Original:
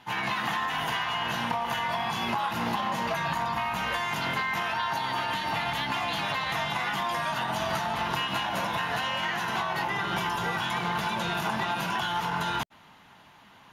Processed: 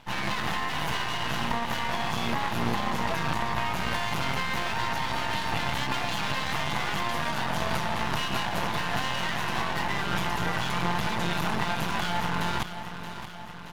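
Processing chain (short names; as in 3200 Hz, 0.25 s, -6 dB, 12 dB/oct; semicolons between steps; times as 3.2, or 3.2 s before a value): low shelf 170 Hz +11 dB; on a send: feedback echo 0.625 s, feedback 60%, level -11 dB; on the sum: half-wave rectifier; gain +3 dB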